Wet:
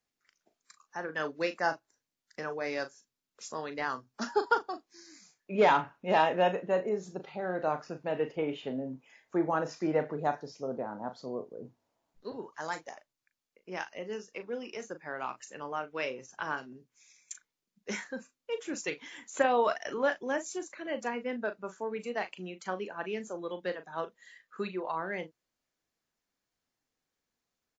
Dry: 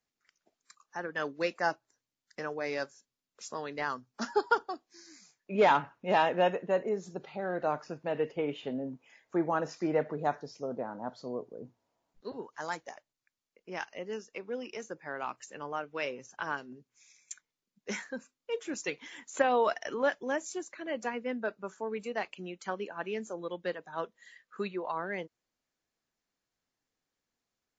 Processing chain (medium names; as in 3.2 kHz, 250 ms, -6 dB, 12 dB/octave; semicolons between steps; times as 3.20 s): doubling 38 ms -10.5 dB